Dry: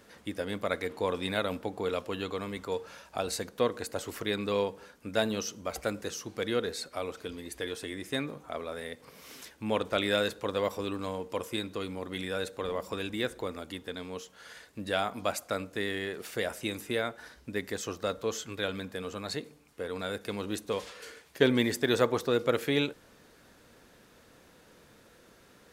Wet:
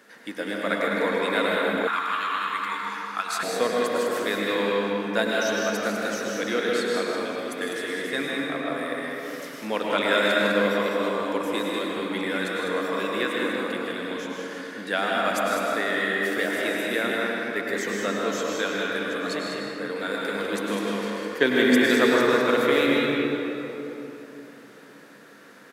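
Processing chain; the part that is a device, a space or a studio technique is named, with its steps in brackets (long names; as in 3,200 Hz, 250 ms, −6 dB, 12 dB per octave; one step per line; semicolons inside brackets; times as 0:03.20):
stadium PA (high-pass filter 180 Hz 24 dB per octave; parametric band 1,700 Hz +7.5 dB 0.8 octaves; loudspeakers that aren't time-aligned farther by 54 metres −9 dB, 69 metres −6 dB; convolution reverb RT60 3.5 s, pre-delay 93 ms, DRR −2 dB)
0:01.87–0:03.43: low shelf with overshoot 770 Hz −12.5 dB, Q 3
level +1 dB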